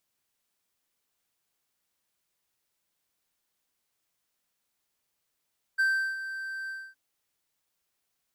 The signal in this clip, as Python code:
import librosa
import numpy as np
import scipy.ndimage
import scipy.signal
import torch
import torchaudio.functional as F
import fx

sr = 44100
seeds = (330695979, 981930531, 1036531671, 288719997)

y = fx.adsr_tone(sr, wave='triangle', hz=1560.0, attack_ms=19.0, decay_ms=362.0, sustain_db=-12.5, held_s=0.91, release_ms=256.0, level_db=-19.0)